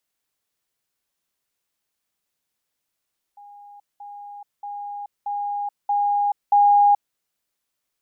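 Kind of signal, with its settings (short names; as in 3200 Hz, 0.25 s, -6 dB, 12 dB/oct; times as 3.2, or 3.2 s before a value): level ladder 817 Hz -41.5 dBFS, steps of 6 dB, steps 6, 0.43 s 0.20 s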